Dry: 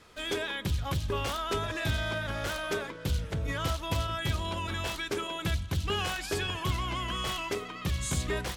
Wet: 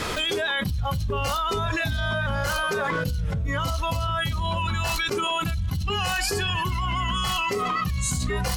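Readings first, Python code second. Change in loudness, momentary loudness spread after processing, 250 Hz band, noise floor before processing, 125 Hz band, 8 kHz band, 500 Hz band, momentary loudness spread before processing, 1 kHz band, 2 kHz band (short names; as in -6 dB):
+6.5 dB, 3 LU, +5.0 dB, -42 dBFS, +6.0 dB, +7.0 dB, +5.0 dB, 3 LU, +9.0 dB, +7.5 dB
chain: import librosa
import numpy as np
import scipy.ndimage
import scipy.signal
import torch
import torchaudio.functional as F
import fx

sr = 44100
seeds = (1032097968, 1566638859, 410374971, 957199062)

y = fx.noise_reduce_blind(x, sr, reduce_db=12)
y = fx.env_flatten(y, sr, amount_pct=100)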